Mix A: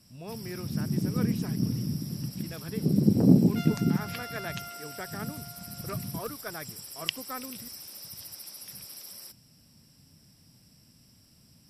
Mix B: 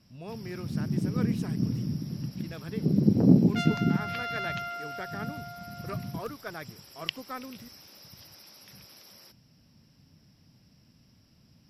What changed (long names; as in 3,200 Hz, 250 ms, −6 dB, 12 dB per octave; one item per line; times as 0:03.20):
first sound: add moving average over 5 samples
second sound +7.5 dB